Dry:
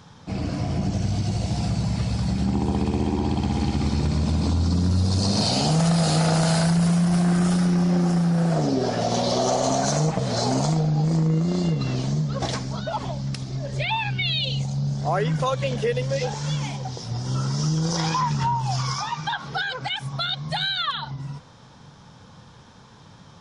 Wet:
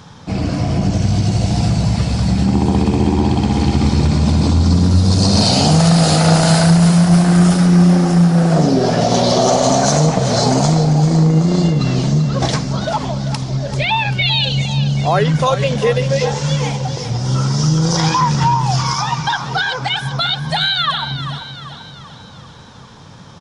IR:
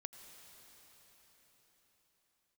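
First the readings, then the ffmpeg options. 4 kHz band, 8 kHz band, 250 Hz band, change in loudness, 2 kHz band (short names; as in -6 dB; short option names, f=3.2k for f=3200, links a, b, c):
+9.0 dB, +9.0 dB, +9.0 dB, +9.0 dB, +9.0 dB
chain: -af "aecho=1:1:390|780|1170|1560|1950:0.282|0.144|0.0733|0.0374|0.0191,volume=8.5dB"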